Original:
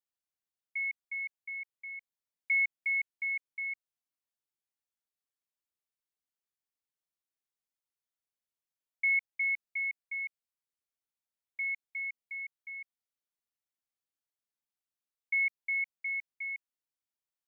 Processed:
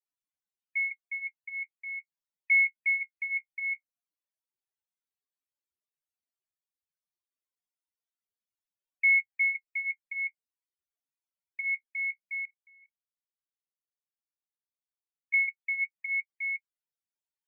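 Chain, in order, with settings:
flanger 0.12 Hz, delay 9.8 ms, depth 6.4 ms, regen −27%
0:12.45–0:15.34: output level in coarse steps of 22 dB
spectral peaks only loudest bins 32
level +7.5 dB

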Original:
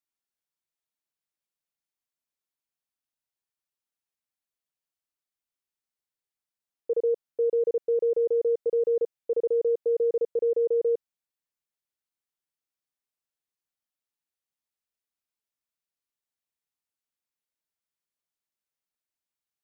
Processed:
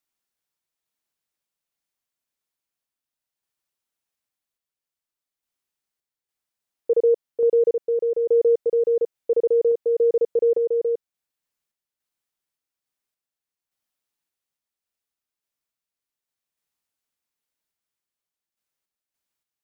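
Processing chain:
sample-and-hold tremolo
level +7 dB

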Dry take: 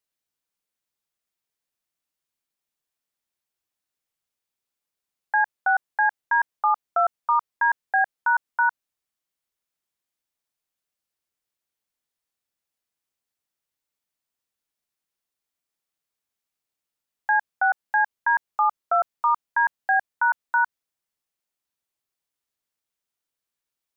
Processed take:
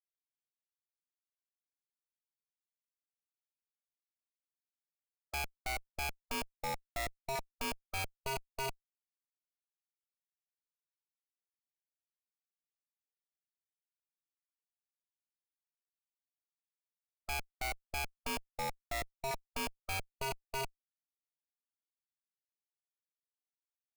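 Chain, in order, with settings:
comparator with hysteresis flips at −39 dBFS
formants moved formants −5 semitones
level −7 dB

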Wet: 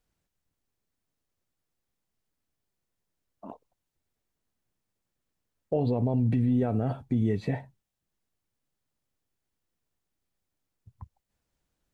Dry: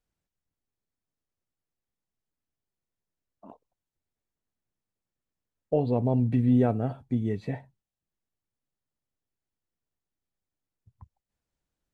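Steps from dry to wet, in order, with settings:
brickwall limiter −23 dBFS, peak gain reduction 11 dB
level +5.5 dB

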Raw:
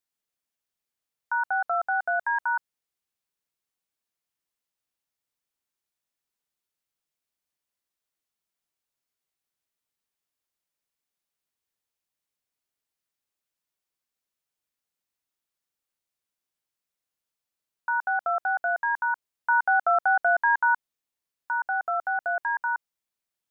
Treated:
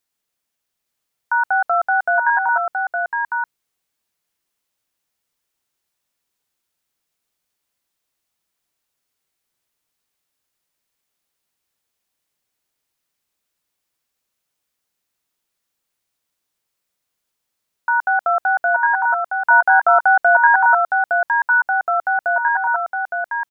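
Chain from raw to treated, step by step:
single-tap delay 863 ms −4.5 dB
level +8.5 dB

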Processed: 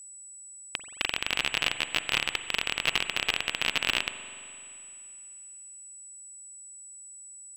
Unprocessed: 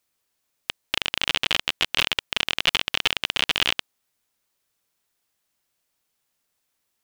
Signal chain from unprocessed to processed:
steady tone 8,500 Hz −39 dBFS
spring reverb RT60 2.4 s, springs 40 ms, chirp 55 ms, DRR 9.5 dB
speed change −7%
level −5 dB

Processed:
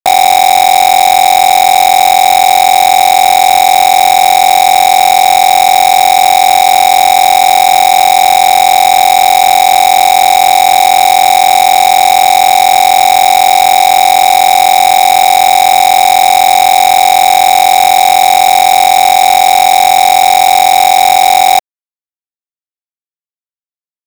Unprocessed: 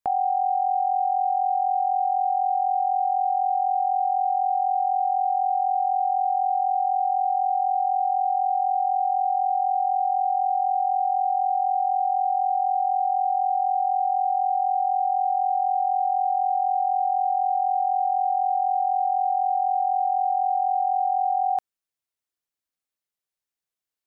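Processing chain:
high-pass with resonance 650 Hz, resonance Q 4.9
log-companded quantiser 2 bits
level −1 dB

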